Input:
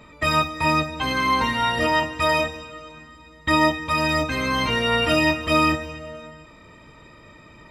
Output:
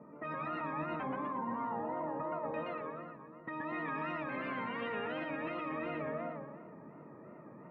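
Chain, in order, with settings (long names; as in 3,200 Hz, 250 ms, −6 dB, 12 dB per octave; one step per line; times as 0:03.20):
Chebyshev high-pass filter 170 Hz, order 3
low-pass that shuts in the quiet parts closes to 680 Hz, open at −19.5 dBFS
low-pass filter 1,900 Hz 24 dB per octave, from 0:01.03 1,100 Hz, from 0:02.54 2,100 Hz
compressor whose output falls as the input rises −29 dBFS, ratio −1
brickwall limiter −25.5 dBFS, peak gain reduction 11 dB
feedback echo with a swinging delay time 121 ms, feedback 48%, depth 218 cents, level −3 dB
level −7 dB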